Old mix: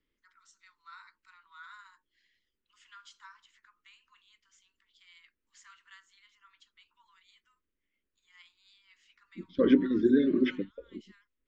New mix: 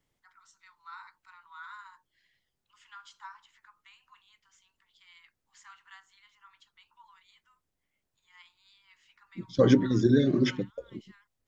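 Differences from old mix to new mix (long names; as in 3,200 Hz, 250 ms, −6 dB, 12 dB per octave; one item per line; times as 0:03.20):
second voice: remove low-pass filter 3,000 Hz 24 dB per octave
master: remove phaser with its sweep stopped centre 310 Hz, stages 4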